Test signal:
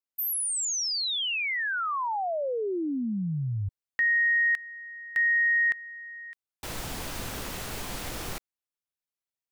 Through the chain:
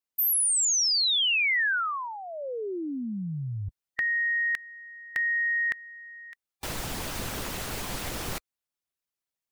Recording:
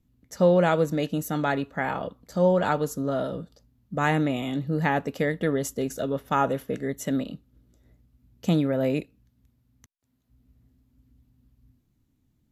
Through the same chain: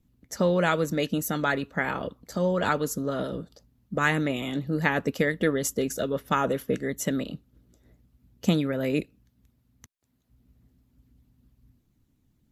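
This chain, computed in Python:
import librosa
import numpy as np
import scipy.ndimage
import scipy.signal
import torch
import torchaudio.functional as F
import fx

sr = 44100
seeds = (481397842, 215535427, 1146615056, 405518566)

y = fx.hpss(x, sr, part='percussive', gain_db=8)
y = fx.dynamic_eq(y, sr, hz=760.0, q=1.9, threshold_db=-36.0, ratio=8.0, max_db=-7)
y = y * 10.0 ** (-3.0 / 20.0)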